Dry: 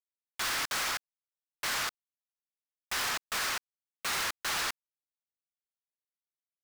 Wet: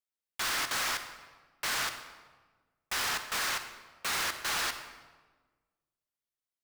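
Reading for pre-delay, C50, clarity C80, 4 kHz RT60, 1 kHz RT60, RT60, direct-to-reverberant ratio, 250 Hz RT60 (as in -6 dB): 38 ms, 8.5 dB, 10.5 dB, 0.95 s, 1.3 s, 1.4 s, 8.0 dB, 1.7 s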